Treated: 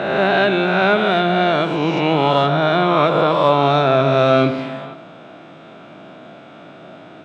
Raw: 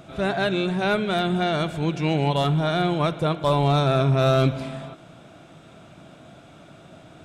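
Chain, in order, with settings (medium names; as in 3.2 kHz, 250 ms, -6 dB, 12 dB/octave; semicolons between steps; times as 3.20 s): reverse spectral sustain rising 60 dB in 1.62 s; band-pass 220–3200 Hz; reverberation RT60 0.45 s, pre-delay 63 ms, DRR 13.5 dB; trim +6 dB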